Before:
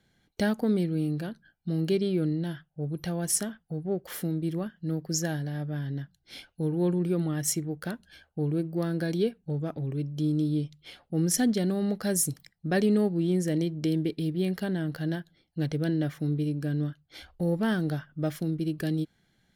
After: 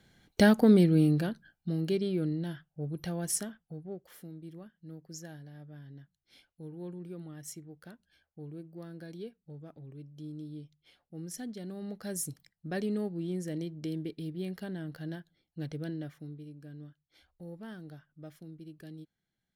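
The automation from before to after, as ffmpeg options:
-af "volume=12dB,afade=t=out:st=0.97:d=0.82:silence=0.354813,afade=t=out:st=3.2:d=0.92:silence=0.251189,afade=t=in:st=11.54:d=0.7:silence=0.446684,afade=t=out:st=15.8:d=0.59:silence=0.354813"

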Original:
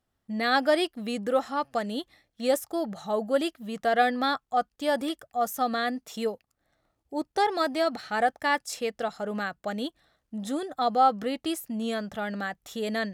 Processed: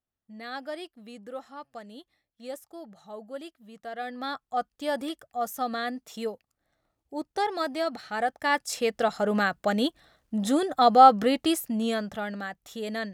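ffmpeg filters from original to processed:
-af "volume=6.5dB,afade=t=in:st=4:d=0.59:silence=0.298538,afade=t=in:st=8.28:d=0.94:silence=0.334965,afade=t=out:st=11.27:d=1.13:silence=0.334965"

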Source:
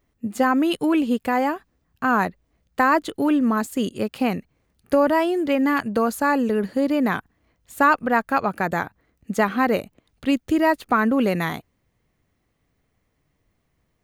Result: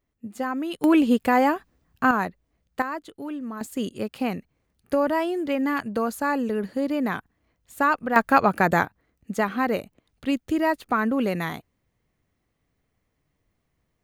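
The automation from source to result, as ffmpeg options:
-af "asetnsamples=n=441:p=0,asendcmd='0.84 volume volume 2dB;2.11 volume volume -4.5dB;2.82 volume volume -13.5dB;3.61 volume volume -4.5dB;8.16 volume volume 3.5dB;8.85 volume volume -4dB',volume=-9dB"

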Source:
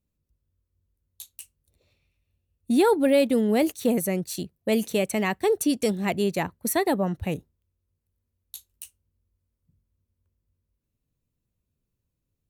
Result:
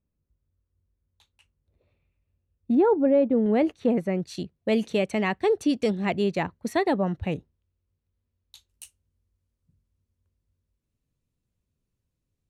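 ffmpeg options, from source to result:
-af "asetnsamples=n=441:p=0,asendcmd='2.75 lowpass f 1000;3.46 lowpass f 2100;4.2 lowpass f 4200;8.69 lowpass f 9900',lowpass=1.8k"

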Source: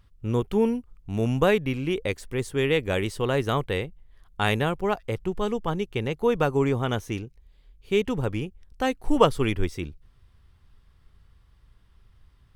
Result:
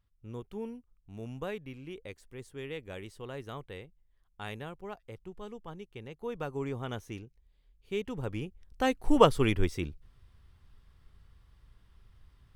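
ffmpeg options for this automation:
-af "volume=-2dB,afade=t=in:st=6.09:d=0.77:silence=0.501187,afade=t=in:st=8.11:d=0.85:silence=0.354813"

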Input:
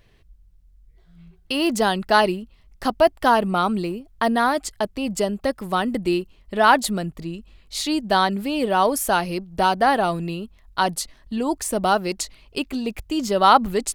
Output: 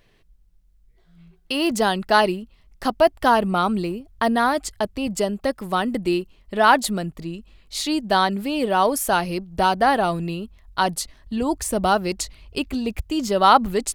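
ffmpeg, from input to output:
-af "asetnsamples=n=441:p=0,asendcmd='1.71 equalizer g -3;3.14 equalizer g 6.5;5.07 equalizer g -2.5;9.13 equalizer g 6;11.42 equalizer g 13.5;13 equalizer g 3.5',equalizer=f=65:t=o:w=1.3:g=-11.5"

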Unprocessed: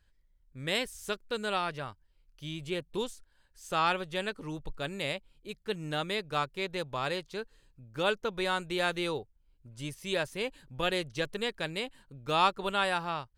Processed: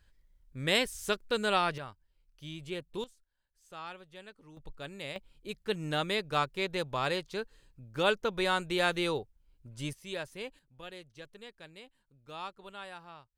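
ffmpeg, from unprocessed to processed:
-af "asetnsamples=n=441:p=0,asendcmd='1.78 volume volume -4dB;3.04 volume volume -16dB;4.57 volume volume -7dB;5.16 volume volume 1.5dB;9.93 volume volume -7dB;10.59 volume volume -16dB',volume=3.5dB"

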